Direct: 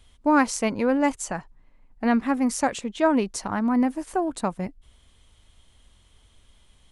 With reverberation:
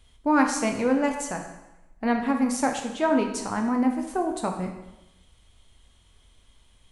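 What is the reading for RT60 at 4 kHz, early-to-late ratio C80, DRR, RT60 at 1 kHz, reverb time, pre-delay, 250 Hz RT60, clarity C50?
0.90 s, 9.0 dB, 3.0 dB, 0.95 s, 0.95 s, 5 ms, 1.0 s, 6.5 dB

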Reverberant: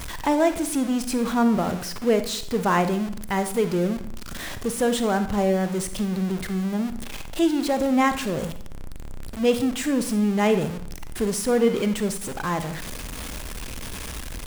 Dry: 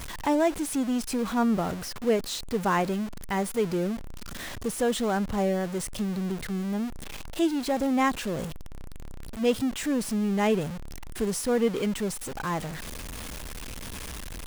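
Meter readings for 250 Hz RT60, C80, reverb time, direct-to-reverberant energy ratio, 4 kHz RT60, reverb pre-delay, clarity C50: 0.65 s, 15.5 dB, 0.60 s, 9.5 dB, 0.45 s, 37 ms, 11.0 dB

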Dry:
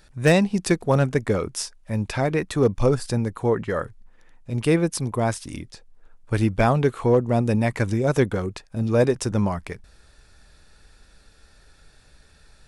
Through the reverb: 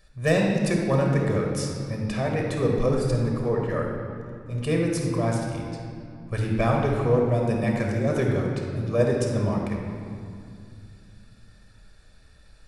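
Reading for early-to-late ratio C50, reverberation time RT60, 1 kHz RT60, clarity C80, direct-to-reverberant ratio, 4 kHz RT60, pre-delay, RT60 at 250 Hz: 1.0 dB, 2.4 s, 2.2 s, 2.5 dB, -0.5 dB, 1.6 s, 5 ms, 3.4 s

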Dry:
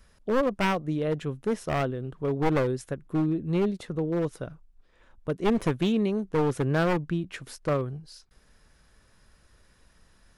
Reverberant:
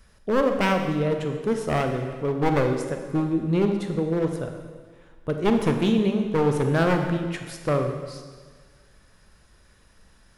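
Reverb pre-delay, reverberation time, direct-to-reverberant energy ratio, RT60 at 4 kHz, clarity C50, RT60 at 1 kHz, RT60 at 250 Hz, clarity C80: 19 ms, 1.6 s, 4.5 dB, 1.5 s, 6.0 dB, 1.6 s, 1.6 s, 7.5 dB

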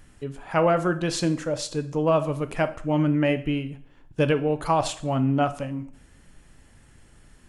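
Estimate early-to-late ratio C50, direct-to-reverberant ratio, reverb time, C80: 15.0 dB, 10.0 dB, 0.60 s, 19.0 dB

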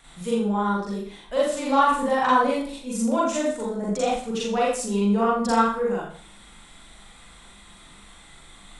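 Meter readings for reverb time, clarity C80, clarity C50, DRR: 0.50 s, 5.0 dB, 1.0 dB, -6.0 dB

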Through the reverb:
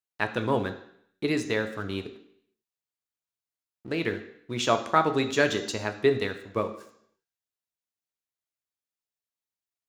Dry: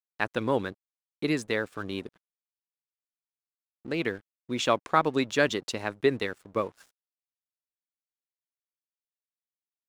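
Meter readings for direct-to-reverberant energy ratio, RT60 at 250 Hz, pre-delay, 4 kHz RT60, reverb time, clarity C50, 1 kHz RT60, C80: 6.0 dB, 0.65 s, 3 ms, 0.70 s, 0.70 s, 11.0 dB, 0.70 s, 14.0 dB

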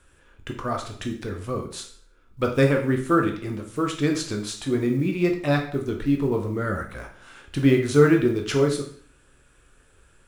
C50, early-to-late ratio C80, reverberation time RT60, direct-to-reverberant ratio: 8.5 dB, 12.0 dB, 0.55 s, 2.5 dB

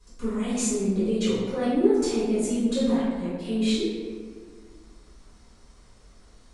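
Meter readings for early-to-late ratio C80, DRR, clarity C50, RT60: 1.0 dB, -13.0 dB, -2.5 dB, 1.8 s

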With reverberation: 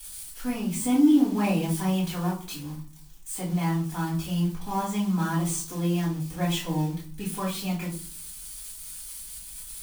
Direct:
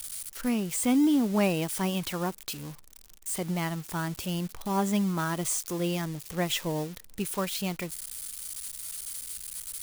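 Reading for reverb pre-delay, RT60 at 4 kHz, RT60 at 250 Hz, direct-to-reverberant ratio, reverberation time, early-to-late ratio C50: 4 ms, 0.30 s, 0.65 s, -7.5 dB, 0.45 s, 7.0 dB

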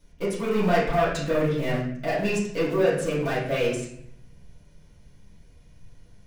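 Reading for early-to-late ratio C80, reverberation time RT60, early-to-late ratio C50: 7.0 dB, 0.65 s, 3.0 dB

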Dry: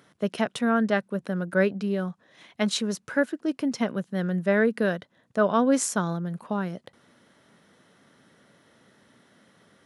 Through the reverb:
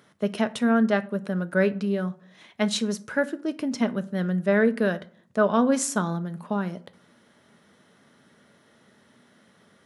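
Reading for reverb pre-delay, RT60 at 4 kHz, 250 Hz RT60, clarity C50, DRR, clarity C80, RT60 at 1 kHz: 5 ms, 0.25 s, 0.70 s, 19.5 dB, 11.0 dB, 24.0 dB, 0.55 s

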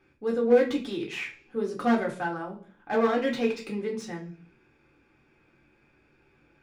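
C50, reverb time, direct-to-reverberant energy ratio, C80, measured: 11.0 dB, 0.45 s, -1.5 dB, 16.5 dB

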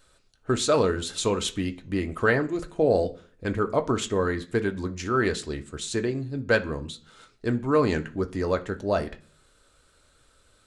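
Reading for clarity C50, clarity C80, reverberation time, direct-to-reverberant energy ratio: 17.5 dB, 23.0 dB, 0.45 s, 6.0 dB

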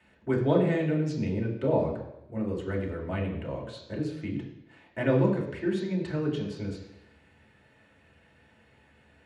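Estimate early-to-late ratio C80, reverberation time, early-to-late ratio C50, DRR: 8.5 dB, 0.90 s, 6.0 dB, -3.0 dB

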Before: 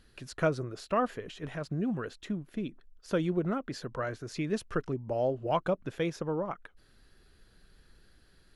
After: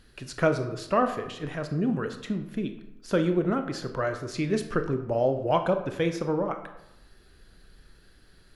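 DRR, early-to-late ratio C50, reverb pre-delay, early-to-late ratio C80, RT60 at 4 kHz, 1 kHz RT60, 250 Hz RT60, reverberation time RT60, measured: 7.0 dB, 10.0 dB, 22 ms, 12.0 dB, 0.55 s, 0.90 s, 0.95 s, 0.90 s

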